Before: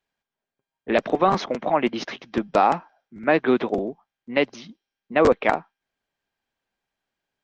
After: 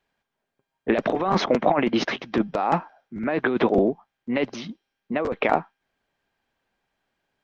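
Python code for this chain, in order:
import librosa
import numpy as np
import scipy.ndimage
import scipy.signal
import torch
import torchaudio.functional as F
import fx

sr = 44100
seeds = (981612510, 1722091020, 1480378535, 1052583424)

y = fx.high_shelf(x, sr, hz=4800.0, db=-9.5)
y = fx.over_compress(y, sr, threshold_db=-24.0, ratio=-1.0)
y = y * 10.0 ** (3.5 / 20.0)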